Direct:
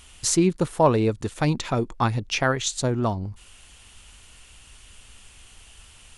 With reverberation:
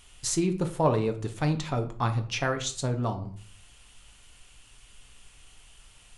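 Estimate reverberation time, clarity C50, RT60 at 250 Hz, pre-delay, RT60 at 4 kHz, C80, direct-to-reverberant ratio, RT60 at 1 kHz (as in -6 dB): 0.50 s, 12.5 dB, 0.65 s, 4 ms, 0.35 s, 17.0 dB, 5.5 dB, 0.50 s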